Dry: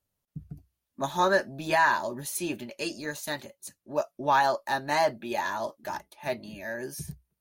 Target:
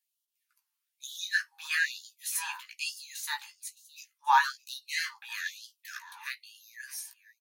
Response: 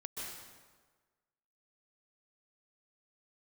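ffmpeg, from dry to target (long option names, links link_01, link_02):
-filter_complex "[0:a]asplit=2[link_01][link_02];[link_02]adelay=16,volume=-5.5dB[link_03];[link_01][link_03]amix=inputs=2:normalize=0,aecho=1:1:615:0.119,afftfilt=real='re*gte(b*sr/1024,770*pow(2800/770,0.5+0.5*sin(2*PI*1.1*pts/sr)))':imag='im*gte(b*sr/1024,770*pow(2800/770,0.5+0.5*sin(2*PI*1.1*pts/sr)))':win_size=1024:overlap=0.75"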